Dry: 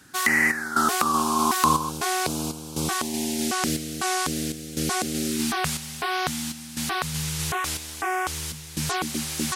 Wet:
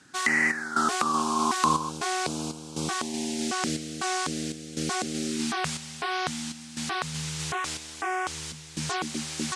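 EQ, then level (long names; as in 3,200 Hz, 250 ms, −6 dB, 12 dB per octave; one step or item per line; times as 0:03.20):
high-pass filter 110 Hz 12 dB per octave
low-pass filter 8,700 Hz 24 dB per octave
−3.0 dB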